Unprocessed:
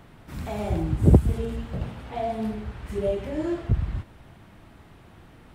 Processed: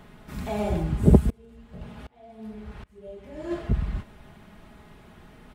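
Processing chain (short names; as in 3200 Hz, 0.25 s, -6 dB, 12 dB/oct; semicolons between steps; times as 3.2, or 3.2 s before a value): comb 4.8 ms, depth 49%; 1.3–3.51 dB-ramp tremolo swelling 1.3 Hz, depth 28 dB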